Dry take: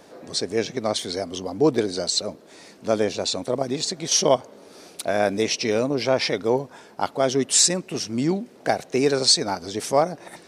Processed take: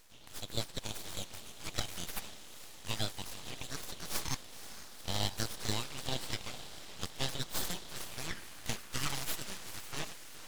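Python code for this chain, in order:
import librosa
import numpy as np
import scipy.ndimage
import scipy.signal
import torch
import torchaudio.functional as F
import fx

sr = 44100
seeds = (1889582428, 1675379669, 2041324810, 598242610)

p1 = fx.spec_gate(x, sr, threshold_db=-20, keep='weak')
p2 = p1 + fx.echo_diffused(p1, sr, ms=488, feedback_pct=71, wet_db=-12, dry=0)
p3 = fx.filter_sweep_highpass(p2, sr, from_hz=1600.0, to_hz=310.0, start_s=7.88, end_s=9.3, q=2.5)
p4 = np.abs(p3)
y = p4 * 10.0 ** (-1.0 / 20.0)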